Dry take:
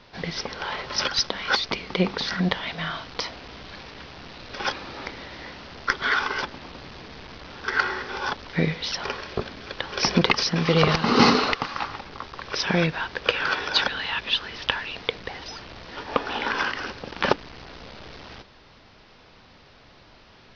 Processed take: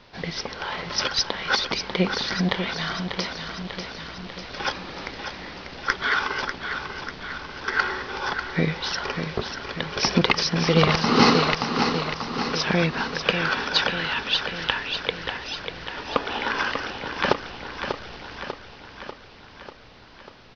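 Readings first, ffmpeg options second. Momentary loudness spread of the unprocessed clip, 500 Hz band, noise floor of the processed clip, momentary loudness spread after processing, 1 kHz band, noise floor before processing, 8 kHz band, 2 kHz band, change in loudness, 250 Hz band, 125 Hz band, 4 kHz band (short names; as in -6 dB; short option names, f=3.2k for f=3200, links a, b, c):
20 LU, +1.0 dB, -47 dBFS, 15 LU, +1.0 dB, -52 dBFS, n/a, +1.0 dB, 0.0 dB, +1.0 dB, +1.5 dB, +1.0 dB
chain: -af "aecho=1:1:593|1186|1779|2372|2965|3558|4151|4744:0.422|0.253|0.152|0.0911|0.0547|0.0328|0.0197|0.0118"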